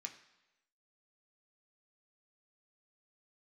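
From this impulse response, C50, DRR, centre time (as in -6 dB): 11.0 dB, 3.0 dB, 13 ms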